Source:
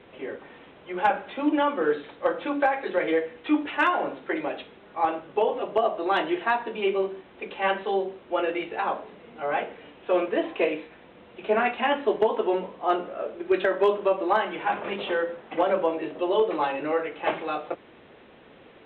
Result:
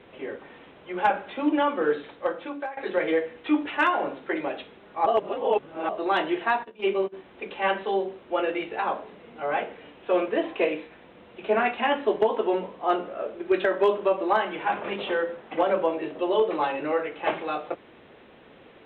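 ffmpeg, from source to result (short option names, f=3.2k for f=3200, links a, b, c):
-filter_complex "[0:a]asplit=3[a][b][c];[a]afade=t=out:st=6.63:d=0.02[d];[b]agate=range=-19dB:threshold=-30dB:ratio=16:release=100:detection=peak,afade=t=in:st=6.63:d=0.02,afade=t=out:st=7.12:d=0.02[e];[c]afade=t=in:st=7.12:d=0.02[f];[d][e][f]amix=inputs=3:normalize=0,asplit=4[g][h][i][j];[g]atrim=end=2.77,asetpts=PTS-STARTPTS,afade=t=out:st=2.05:d=0.72:silence=0.158489[k];[h]atrim=start=2.77:end=5.062,asetpts=PTS-STARTPTS,afade=t=in:d=0.004:c=hsin:silence=0.158489[l];[i]atrim=start=5.058:end=5.892,asetpts=PTS-STARTPTS,areverse[m];[j]atrim=start=5.888[n];[k][l]concat=n=2:v=0:a=1[o];[o][m]acrossfade=d=0.004:c1=hsin:c2=hsin[p];[p][n]acrossfade=d=0.004:c1=hsin:c2=hsin"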